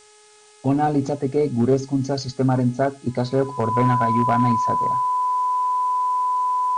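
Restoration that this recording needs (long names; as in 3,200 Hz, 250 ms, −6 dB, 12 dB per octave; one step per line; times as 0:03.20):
clipped peaks rebuilt −10.5 dBFS
hum removal 422 Hz, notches 16
notch filter 1,000 Hz, Q 30
downward expander −40 dBFS, range −21 dB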